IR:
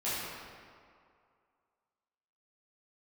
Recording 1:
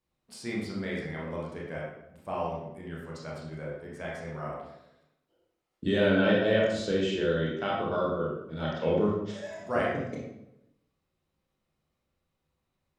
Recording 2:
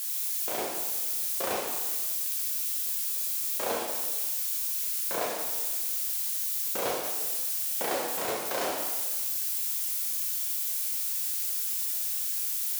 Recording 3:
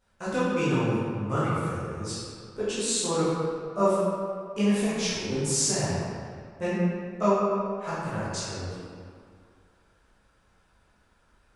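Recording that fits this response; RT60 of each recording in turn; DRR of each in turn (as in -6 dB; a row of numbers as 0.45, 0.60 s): 3; 0.85, 1.4, 2.3 s; -5.0, -3.0, -12.0 dB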